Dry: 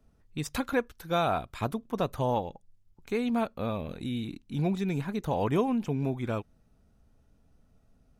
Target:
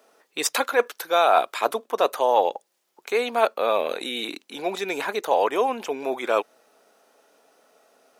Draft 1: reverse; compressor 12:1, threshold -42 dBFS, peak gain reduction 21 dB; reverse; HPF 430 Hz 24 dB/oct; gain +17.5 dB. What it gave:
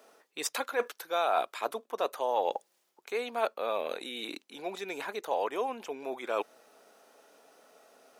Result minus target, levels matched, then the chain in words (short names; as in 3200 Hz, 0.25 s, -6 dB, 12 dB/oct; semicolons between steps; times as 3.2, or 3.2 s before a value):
compressor: peak gain reduction +10 dB
reverse; compressor 12:1, threshold -31 dBFS, peak gain reduction 10.5 dB; reverse; HPF 430 Hz 24 dB/oct; gain +17.5 dB